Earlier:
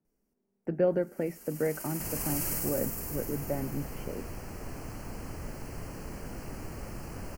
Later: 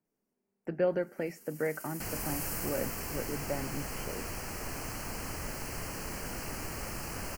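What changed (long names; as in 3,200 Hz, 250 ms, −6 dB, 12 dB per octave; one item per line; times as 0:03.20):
first sound −11.0 dB
second sound +4.0 dB
master: add tilt shelving filter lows −5.5 dB, about 850 Hz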